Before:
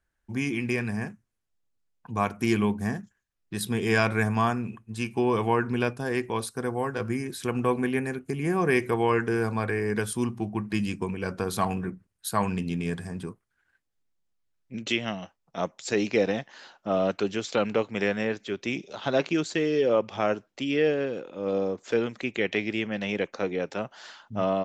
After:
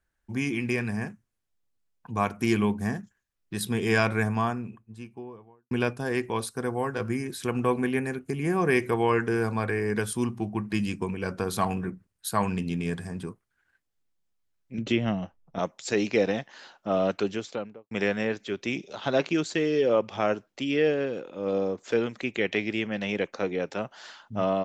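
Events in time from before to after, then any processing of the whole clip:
3.91–5.71 s: studio fade out
14.78–15.59 s: tilt EQ -3 dB/octave
17.19–17.91 s: studio fade out

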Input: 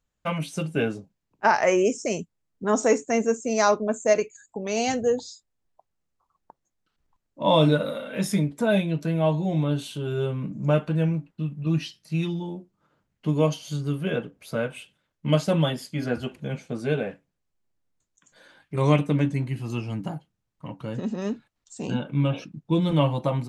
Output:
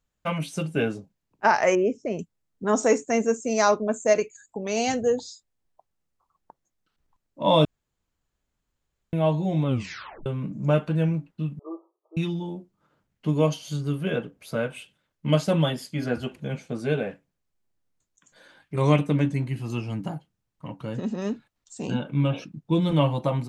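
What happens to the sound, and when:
1.75–2.19 s: tape spacing loss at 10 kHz 36 dB
7.65–9.13 s: room tone
9.66 s: tape stop 0.60 s
11.59–12.17 s: brick-wall FIR band-pass 330–1300 Hz

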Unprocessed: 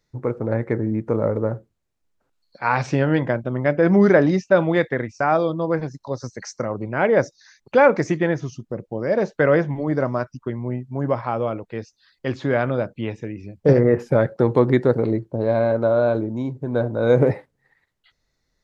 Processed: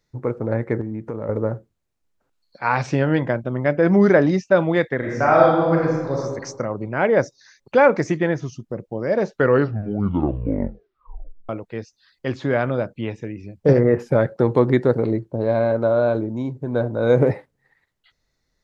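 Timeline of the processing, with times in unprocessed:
0.81–1.29 s: compression 4:1, threshold -25 dBFS
4.97–6.16 s: reverb throw, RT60 1.3 s, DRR -3 dB
9.27 s: tape stop 2.22 s

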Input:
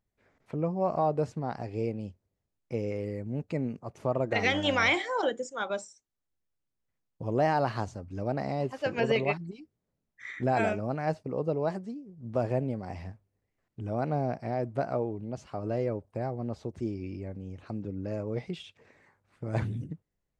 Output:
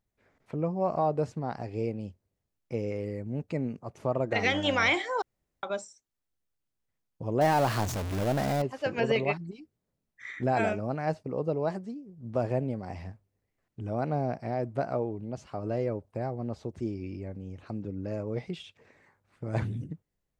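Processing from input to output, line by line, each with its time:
5.22–5.63 s: room tone
7.41–8.62 s: jump at every zero crossing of -29 dBFS

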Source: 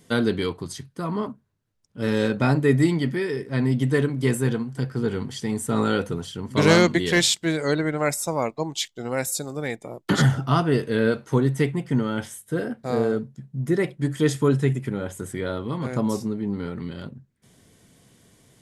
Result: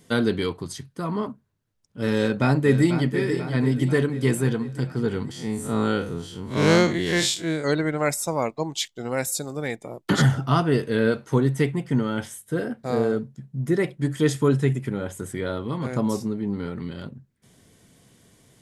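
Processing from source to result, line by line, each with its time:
2.16–3.10 s: echo throw 490 ms, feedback 60%, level -9.5 dB
5.31–7.64 s: spectral blur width 93 ms

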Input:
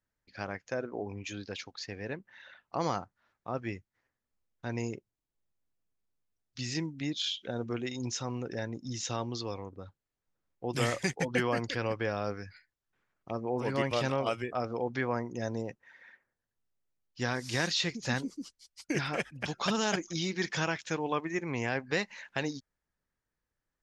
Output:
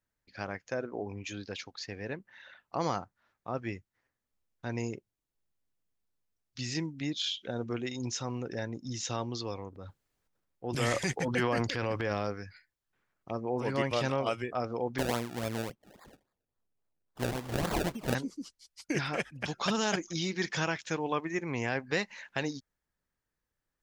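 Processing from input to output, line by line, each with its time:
9.71–12.27 s: transient shaper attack -3 dB, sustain +9 dB
14.98–18.15 s: decimation with a swept rate 29× 3.6 Hz

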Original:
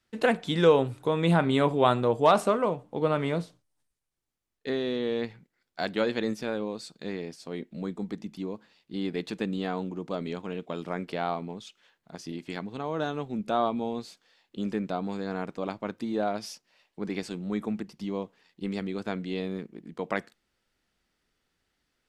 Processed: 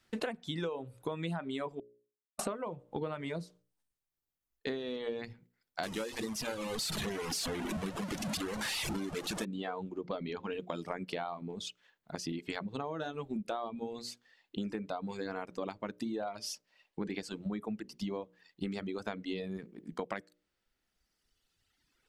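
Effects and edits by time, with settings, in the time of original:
1.80–2.39 s: mute
5.83–9.45 s: one-bit delta coder 64 kbps, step -26.5 dBFS
10.01–10.53 s: low-pass 5.7 kHz 24 dB/octave
whole clip: hum notches 60/120/180/240/300/360/420/480/540/600 Hz; reverb removal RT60 1.9 s; compression 16:1, threshold -39 dBFS; trim +5.5 dB

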